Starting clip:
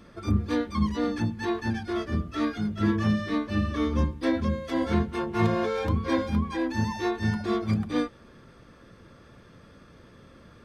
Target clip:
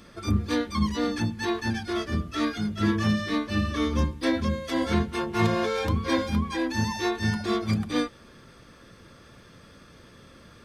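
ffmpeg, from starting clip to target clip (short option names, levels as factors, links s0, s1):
-af "highshelf=f=2400:g=9"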